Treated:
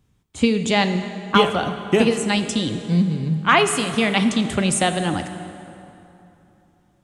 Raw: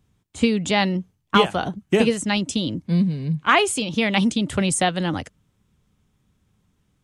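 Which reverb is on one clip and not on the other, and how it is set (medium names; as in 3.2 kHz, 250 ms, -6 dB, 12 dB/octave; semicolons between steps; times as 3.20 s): plate-style reverb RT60 3.1 s, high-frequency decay 0.65×, DRR 8 dB; trim +1 dB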